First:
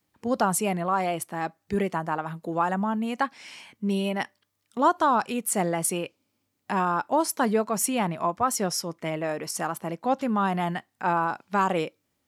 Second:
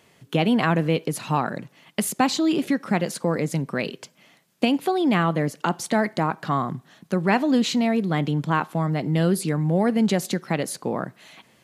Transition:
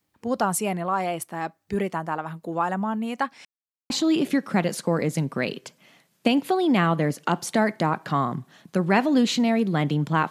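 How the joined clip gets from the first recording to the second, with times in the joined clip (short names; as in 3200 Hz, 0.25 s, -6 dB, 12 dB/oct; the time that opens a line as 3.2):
first
3.45–3.9 mute
3.9 switch to second from 2.27 s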